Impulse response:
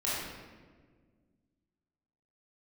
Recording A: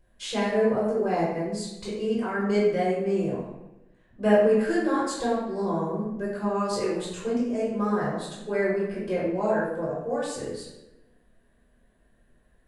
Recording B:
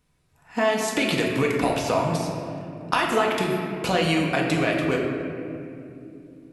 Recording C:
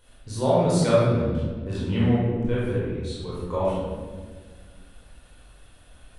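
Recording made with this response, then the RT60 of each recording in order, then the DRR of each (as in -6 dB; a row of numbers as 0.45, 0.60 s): C; 0.95, 2.8, 1.6 s; -9.5, -1.5, -9.0 dB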